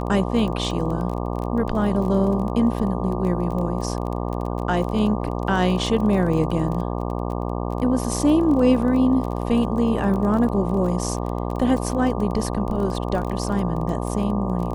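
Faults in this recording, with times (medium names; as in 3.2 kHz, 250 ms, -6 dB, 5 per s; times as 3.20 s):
buzz 60 Hz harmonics 20 -26 dBFS
crackle 23 per s -28 dBFS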